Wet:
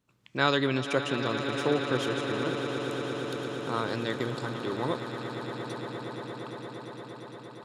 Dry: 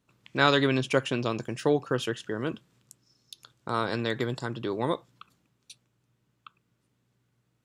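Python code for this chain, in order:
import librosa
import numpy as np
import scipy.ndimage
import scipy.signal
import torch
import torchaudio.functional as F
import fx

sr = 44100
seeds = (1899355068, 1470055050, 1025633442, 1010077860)

y = fx.echo_swell(x, sr, ms=116, loudest=8, wet_db=-13.0)
y = F.gain(torch.from_numpy(y), -3.0).numpy()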